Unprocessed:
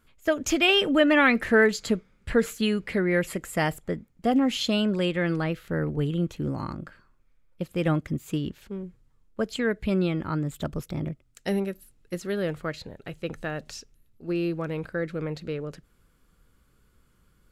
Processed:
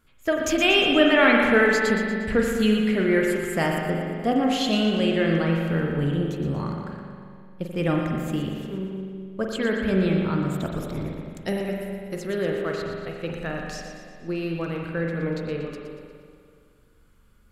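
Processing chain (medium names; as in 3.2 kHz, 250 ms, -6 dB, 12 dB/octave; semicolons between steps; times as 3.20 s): two-band feedback delay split 890 Hz, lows 205 ms, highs 118 ms, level -9 dB; spring tank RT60 2 s, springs 42 ms, chirp 50 ms, DRR 1 dB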